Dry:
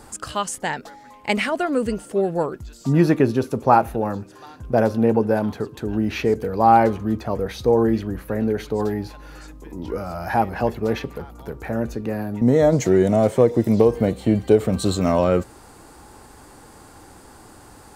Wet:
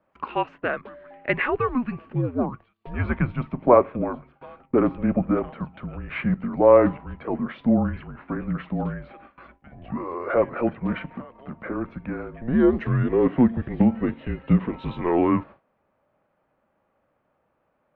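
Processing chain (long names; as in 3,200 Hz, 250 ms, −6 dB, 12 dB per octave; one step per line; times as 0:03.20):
single-sideband voice off tune −250 Hz 420–2,900 Hz
dynamic equaliser 1,100 Hz, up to +5 dB, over −49 dBFS, Q 7.6
noise gate with hold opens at −37 dBFS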